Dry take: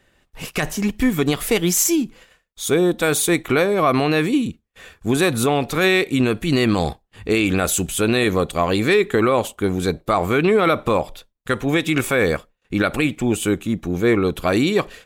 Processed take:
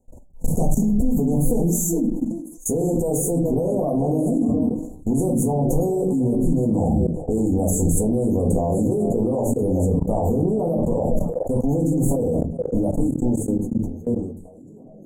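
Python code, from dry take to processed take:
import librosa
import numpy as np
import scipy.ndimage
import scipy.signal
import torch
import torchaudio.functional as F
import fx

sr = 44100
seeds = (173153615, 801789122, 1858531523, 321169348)

p1 = fx.fade_out_tail(x, sr, length_s=3.76)
p2 = scipy.signal.sosfilt(scipy.signal.cheby1(5, 1.0, [890.0, 6600.0], 'bandstop', fs=sr, output='sos'), p1)
p3 = fx.peak_eq(p2, sr, hz=3700.0, db=14.5, octaves=0.47)
p4 = fx.hum_notches(p3, sr, base_hz=50, count=3)
p5 = p4 + fx.echo_stepped(p4, sr, ms=207, hz=190.0, octaves=1.4, feedback_pct=70, wet_db=-6.5, dry=0)
p6 = fx.room_shoebox(p5, sr, seeds[0], volume_m3=140.0, walls='furnished', distance_m=1.8)
p7 = fx.level_steps(p6, sr, step_db=24)
p8 = fx.low_shelf(p7, sr, hz=210.0, db=11.0)
y = fx.sustainer(p8, sr, db_per_s=71.0)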